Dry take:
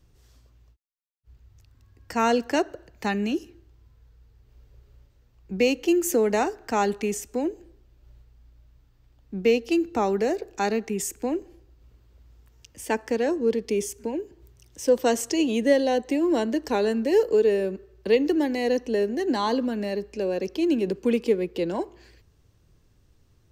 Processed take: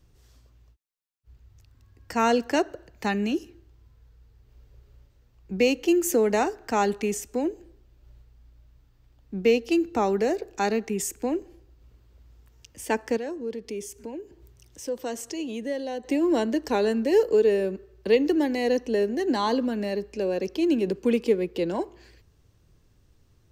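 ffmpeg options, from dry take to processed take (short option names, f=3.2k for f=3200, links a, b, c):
-filter_complex "[0:a]asettb=1/sr,asplit=3[a][b][c];[a]atrim=end=13.174[d];[b]atrim=start=13.17:end=16.04,asetpts=PTS-STARTPTS,afade=t=in:d=0.004:c=qsin,afade=t=out:st=2.866:d=0.004:c=qsin,acompressor=threshold=-45dB:ratio=1.5:attack=3.2:release=140:knee=1:detection=peak[e];[c]atrim=start=16.036[f];[d][e]acrossfade=d=0.004:c1=hsin:c2=qsin[g];[g][f]acrossfade=d=0.004:c1=qsin:c2=hsin"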